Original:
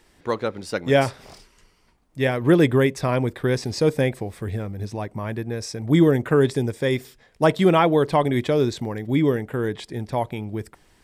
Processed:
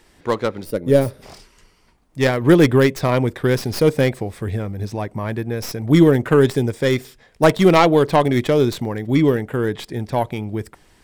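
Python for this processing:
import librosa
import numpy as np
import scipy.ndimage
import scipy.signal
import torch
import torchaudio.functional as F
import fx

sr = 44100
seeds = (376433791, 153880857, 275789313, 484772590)

y = fx.tracing_dist(x, sr, depth_ms=0.13)
y = fx.spec_box(y, sr, start_s=0.65, length_s=0.57, low_hz=630.0, high_hz=8700.0, gain_db=-12)
y = y * librosa.db_to_amplitude(4.0)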